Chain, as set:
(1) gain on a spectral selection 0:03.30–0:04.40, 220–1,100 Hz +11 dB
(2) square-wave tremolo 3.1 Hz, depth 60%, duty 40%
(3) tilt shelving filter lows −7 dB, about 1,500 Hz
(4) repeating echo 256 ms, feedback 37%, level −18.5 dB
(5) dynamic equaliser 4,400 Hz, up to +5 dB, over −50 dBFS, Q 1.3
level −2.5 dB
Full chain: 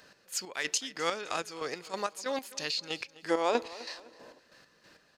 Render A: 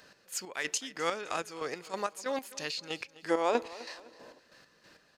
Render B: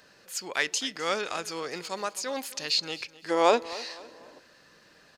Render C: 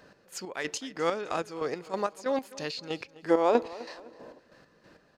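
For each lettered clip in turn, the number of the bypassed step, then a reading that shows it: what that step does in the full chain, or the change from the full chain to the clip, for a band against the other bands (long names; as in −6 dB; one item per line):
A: 5, change in momentary loudness spread +2 LU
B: 2, change in momentary loudness spread +2 LU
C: 3, 8 kHz band −10.5 dB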